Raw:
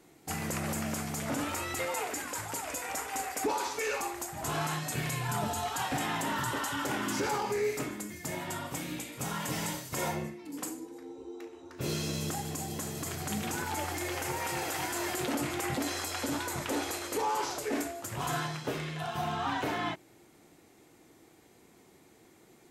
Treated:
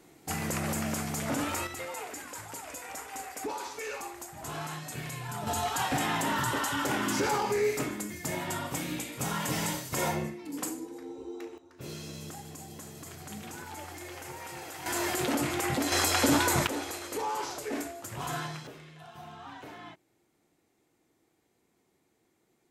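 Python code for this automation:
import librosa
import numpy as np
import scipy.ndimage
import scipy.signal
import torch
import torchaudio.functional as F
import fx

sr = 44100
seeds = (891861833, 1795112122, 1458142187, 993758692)

y = fx.gain(x, sr, db=fx.steps((0.0, 2.0), (1.67, -5.0), (5.47, 3.0), (11.58, -8.0), (14.86, 3.0), (15.92, 9.5), (16.67, -2.0), (18.67, -13.0)))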